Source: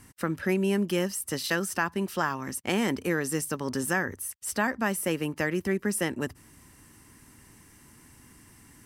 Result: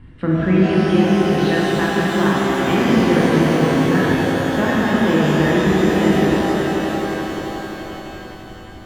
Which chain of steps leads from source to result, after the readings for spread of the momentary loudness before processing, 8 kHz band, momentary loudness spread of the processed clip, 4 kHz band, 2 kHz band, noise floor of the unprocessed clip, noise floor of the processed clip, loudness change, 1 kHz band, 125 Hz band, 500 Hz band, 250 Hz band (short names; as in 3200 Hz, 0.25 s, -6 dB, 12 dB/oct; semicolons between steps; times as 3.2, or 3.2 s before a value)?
5 LU, -1.5 dB, 13 LU, +11.5 dB, +9.0 dB, -56 dBFS, -36 dBFS, +12.0 dB, +13.0 dB, +16.0 dB, +13.5 dB, +15.0 dB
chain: steep low-pass 9400 Hz; tilt -3.5 dB/oct; transient shaper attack 0 dB, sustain +4 dB; resonant high shelf 4600 Hz -11 dB, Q 3; reverb removal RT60 1.5 s; swelling echo 87 ms, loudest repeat 5, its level -13 dB; shimmer reverb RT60 3.8 s, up +12 st, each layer -8 dB, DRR -6.5 dB